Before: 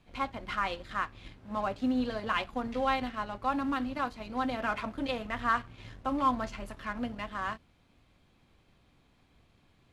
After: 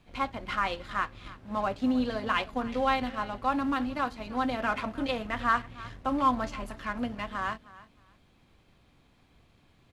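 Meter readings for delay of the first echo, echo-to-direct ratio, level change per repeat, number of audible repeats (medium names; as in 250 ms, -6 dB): 312 ms, -19.0 dB, -13.5 dB, 2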